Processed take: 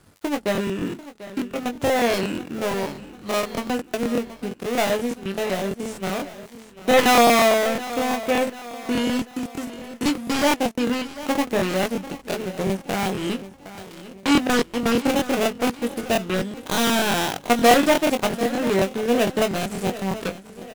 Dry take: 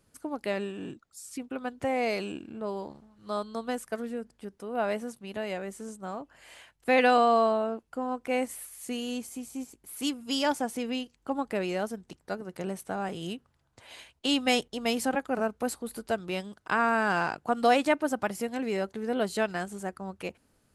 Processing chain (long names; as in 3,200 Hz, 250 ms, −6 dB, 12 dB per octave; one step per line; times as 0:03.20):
gap after every zero crossing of 0.27 ms
in parallel at +2.5 dB: downward compressor, threshold −43 dBFS, peak gain reduction 22.5 dB
on the sum: double-tracking delay 21 ms −6 dB
repeating echo 742 ms, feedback 48%, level −15.5 dB
regular buffer underruns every 0.12 s, samples 1,024, repeat, from 0:00.41
level +6.5 dB